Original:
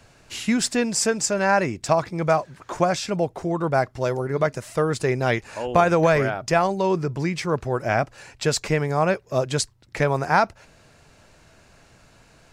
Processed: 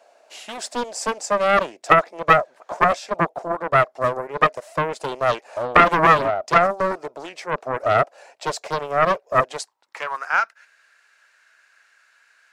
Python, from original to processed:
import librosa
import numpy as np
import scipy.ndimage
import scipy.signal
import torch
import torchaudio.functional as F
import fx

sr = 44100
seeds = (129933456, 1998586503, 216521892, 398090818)

y = fx.filter_sweep_highpass(x, sr, from_hz=660.0, to_hz=1600.0, start_s=9.39, end_s=10.53, q=4.0)
y = fx.graphic_eq(y, sr, hz=(125, 250, 500), db=(-8, 6, 6))
y = fx.doppler_dist(y, sr, depth_ms=0.81)
y = F.gain(torch.from_numpy(y), -7.0).numpy()